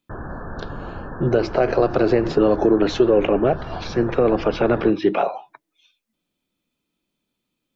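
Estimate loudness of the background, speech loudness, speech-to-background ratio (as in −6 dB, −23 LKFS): −34.0 LKFS, −19.5 LKFS, 14.5 dB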